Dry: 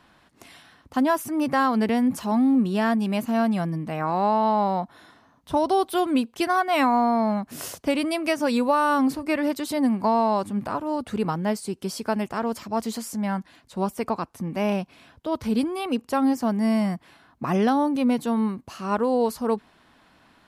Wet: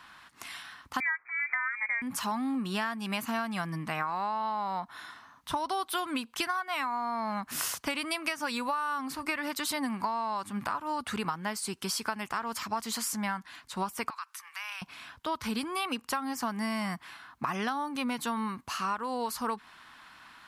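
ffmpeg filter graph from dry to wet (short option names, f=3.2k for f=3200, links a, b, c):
-filter_complex "[0:a]asettb=1/sr,asplit=3[a][b][c];[a]atrim=end=1.004[d];[b]atrim=start=1:end=2.02,asetpts=PTS-STARTPTS,afade=t=in:d=0.004:c=qsin,afade=t=out:st=1.016:d=0.004:c=qsin,lowshelf=f=340:t=q:w=1.5:g=-12.5,bandreject=f=1.1k:w=17,lowpass=f=2.2k:t=q:w=0.5098,lowpass=f=2.2k:t=q:w=0.6013,lowpass=f=2.2k:t=q:w=0.9,lowpass=f=2.2k:t=q:w=2.563,afreqshift=-2600[e];[c]atrim=start=2.016[f];[d][e]acrossfade=d=0.004:c1=hsin:c2=qsin[g];[g][f]acrossfade=d=0.004:c1=qsin:c2=hsin,asettb=1/sr,asplit=3[h][i][j];[h]atrim=end=14.104[k];[i]atrim=start=14.1:end=14.82,asetpts=PTS-STARTPTS,afade=t=in:d=0.004:c=qsin,afade=t=out:st=0.716:d=0.004:c=qsin,highpass=f=1.2k:w=0.5412,highpass=f=1.2k:w=1.3066,acompressor=threshold=-43dB:ratio=3:attack=3.2:release=140:knee=1:detection=peak[l];[j]atrim=start=14.816[m];[k][l]acrossfade=d=0.004:c1=hsin:c2=qsin[n];[n][m]acrossfade=d=0.004:c1=qsin:c2=hsin,lowshelf=f=790:t=q:w=1.5:g=-11,acompressor=threshold=-34dB:ratio=12,volume=5.5dB"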